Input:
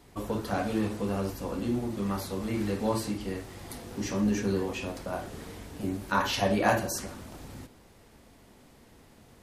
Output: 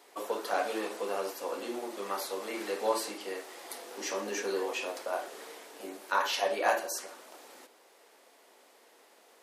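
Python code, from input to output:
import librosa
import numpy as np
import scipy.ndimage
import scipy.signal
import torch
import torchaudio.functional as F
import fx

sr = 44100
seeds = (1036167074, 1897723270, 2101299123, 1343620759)

y = scipy.signal.sosfilt(scipy.signal.butter(4, 410.0, 'highpass', fs=sr, output='sos'), x)
y = fx.rider(y, sr, range_db=4, speed_s=2.0)
y = y * librosa.db_to_amplitude(-1.0)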